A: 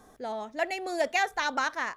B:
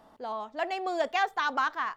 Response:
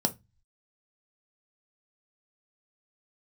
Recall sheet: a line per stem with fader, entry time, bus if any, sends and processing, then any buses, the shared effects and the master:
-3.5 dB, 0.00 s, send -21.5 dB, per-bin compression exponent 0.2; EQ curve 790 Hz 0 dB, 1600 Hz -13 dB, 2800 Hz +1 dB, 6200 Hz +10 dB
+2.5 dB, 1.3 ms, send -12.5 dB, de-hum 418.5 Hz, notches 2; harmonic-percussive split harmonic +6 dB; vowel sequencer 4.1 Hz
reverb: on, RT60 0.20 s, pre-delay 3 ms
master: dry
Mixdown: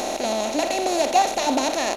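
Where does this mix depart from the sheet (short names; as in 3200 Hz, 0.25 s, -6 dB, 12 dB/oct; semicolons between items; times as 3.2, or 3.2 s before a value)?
stem A: send off; master: extra low shelf 420 Hz +9.5 dB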